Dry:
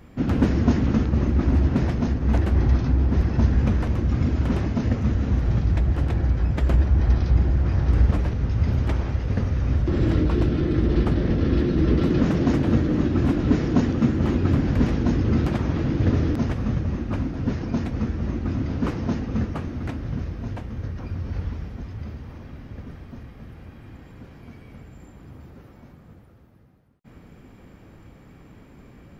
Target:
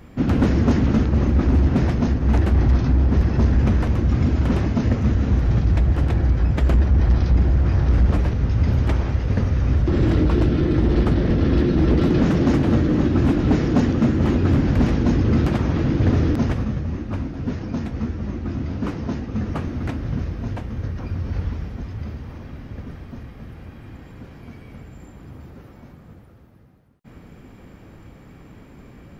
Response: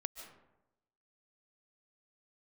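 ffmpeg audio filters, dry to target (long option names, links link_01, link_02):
-filter_complex "[0:a]volume=14.5dB,asoftclip=hard,volume=-14.5dB,asplit=3[link_01][link_02][link_03];[link_01]afade=type=out:start_time=16.63:duration=0.02[link_04];[link_02]flanger=delay=9.5:depth=5.2:regen=67:speed=1.7:shape=sinusoidal,afade=type=in:start_time=16.63:duration=0.02,afade=type=out:start_time=19.45:duration=0.02[link_05];[link_03]afade=type=in:start_time=19.45:duration=0.02[link_06];[link_04][link_05][link_06]amix=inputs=3:normalize=0,volume=3.5dB"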